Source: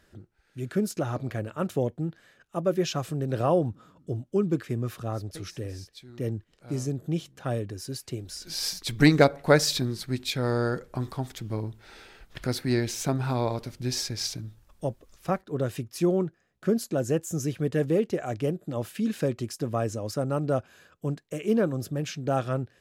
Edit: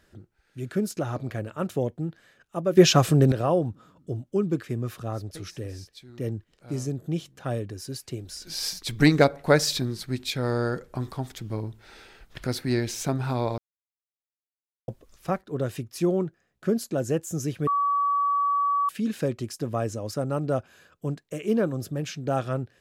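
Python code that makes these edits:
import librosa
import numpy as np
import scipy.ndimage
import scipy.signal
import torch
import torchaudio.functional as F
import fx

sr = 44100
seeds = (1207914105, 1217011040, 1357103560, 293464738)

y = fx.edit(x, sr, fx.clip_gain(start_s=2.77, length_s=0.55, db=11.5),
    fx.silence(start_s=13.58, length_s=1.3),
    fx.bleep(start_s=17.67, length_s=1.22, hz=1140.0, db=-20.5), tone=tone)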